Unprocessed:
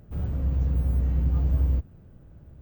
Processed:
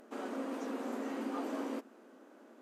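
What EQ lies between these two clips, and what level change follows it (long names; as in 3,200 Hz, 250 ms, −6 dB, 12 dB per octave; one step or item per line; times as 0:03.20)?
linear-phase brick-wall band-pass 220–14,000 Hz
parametric band 1,200 Hz +5.5 dB 1.6 octaves
high-shelf EQ 5,800 Hz +11 dB
+2.5 dB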